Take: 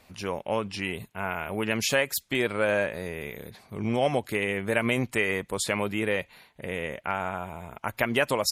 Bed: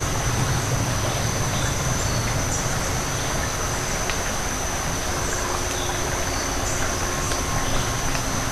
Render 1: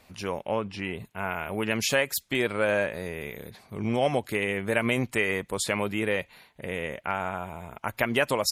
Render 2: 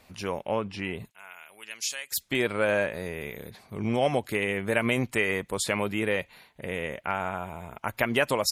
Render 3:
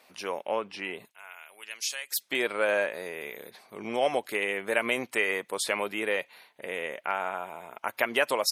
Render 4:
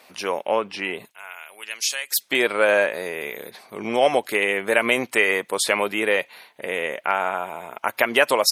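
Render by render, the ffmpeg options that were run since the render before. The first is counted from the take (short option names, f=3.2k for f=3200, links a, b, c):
-filter_complex "[0:a]asettb=1/sr,asplit=3[a][b][c];[a]atrim=end=0.514[d];[b]atrim=start=0.51:end=1.05,asetpts=PTS-STARTPTS,afade=t=in:d=0.004:c=qsin,afade=t=out:st=0.536:d=0.004:c=qsin,highshelf=f=3.9k:g=-11[e];[c]atrim=start=1.046[f];[d][e]acrossfade=d=0.004:c1=hsin:c2=qsin[g];[g][f]acrossfade=d=0.004:c1=qsin:c2=hsin"
-filter_complex "[0:a]asplit=3[a][b][c];[a]afade=t=out:st=1.1:d=0.02[d];[b]bandpass=f=7k:t=q:w=1,afade=t=in:st=1.1:d=0.02,afade=t=out:st=2.11:d=0.02[e];[c]afade=t=in:st=2.11:d=0.02[f];[d][e][f]amix=inputs=3:normalize=0"
-af "highpass=390,bandreject=f=7.1k:w=11"
-af "volume=8dB,alimiter=limit=-3dB:level=0:latency=1"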